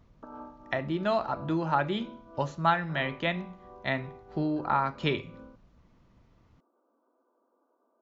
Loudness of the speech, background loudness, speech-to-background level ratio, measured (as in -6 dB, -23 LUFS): -30.5 LUFS, -49.0 LUFS, 18.5 dB